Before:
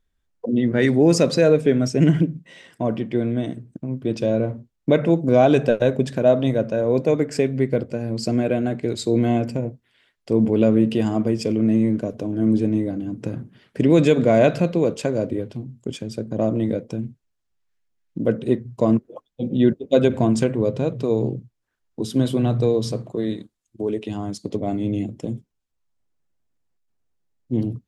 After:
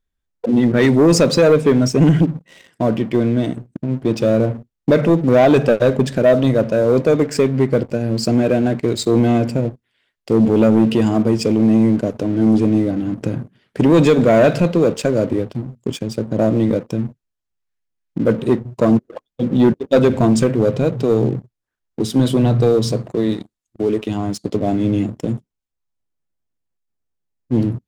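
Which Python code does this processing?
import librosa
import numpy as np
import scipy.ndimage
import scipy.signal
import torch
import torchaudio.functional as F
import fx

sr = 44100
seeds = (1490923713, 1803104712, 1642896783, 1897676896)

y = fx.leveller(x, sr, passes=2)
y = y * 10.0 ** (-1.0 / 20.0)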